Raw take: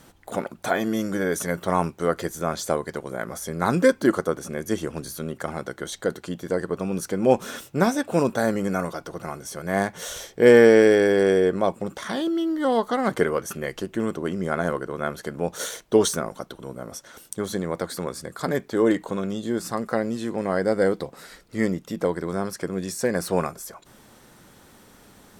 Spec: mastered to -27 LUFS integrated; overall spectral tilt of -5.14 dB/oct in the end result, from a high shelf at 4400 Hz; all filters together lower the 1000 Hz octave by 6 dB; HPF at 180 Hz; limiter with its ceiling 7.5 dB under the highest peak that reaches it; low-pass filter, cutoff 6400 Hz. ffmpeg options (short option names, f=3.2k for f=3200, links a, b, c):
-af "highpass=180,lowpass=6.4k,equalizer=f=1k:t=o:g=-8.5,highshelf=f=4.4k:g=-4.5,volume=1dB,alimiter=limit=-11.5dB:level=0:latency=1"